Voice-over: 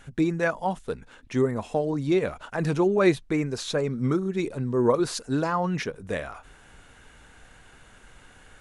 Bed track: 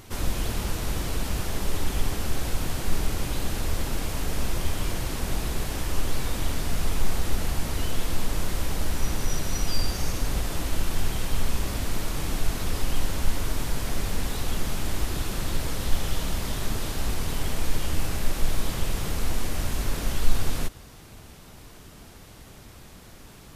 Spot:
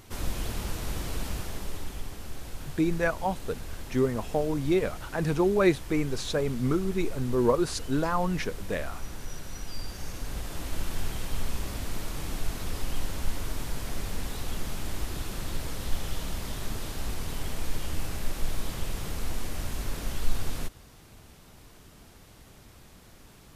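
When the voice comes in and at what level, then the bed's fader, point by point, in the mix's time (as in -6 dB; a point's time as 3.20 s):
2.60 s, -2.0 dB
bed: 1.26 s -4.5 dB
2.07 s -12 dB
9.70 s -12 dB
10.82 s -5.5 dB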